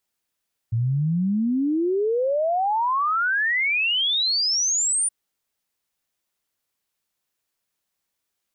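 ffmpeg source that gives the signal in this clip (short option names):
-f lavfi -i "aevalsrc='0.112*clip(min(t,4.37-t)/0.01,0,1)*sin(2*PI*110*4.37/log(9500/110)*(exp(log(9500/110)*t/4.37)-1))':d=4.37:s=44100"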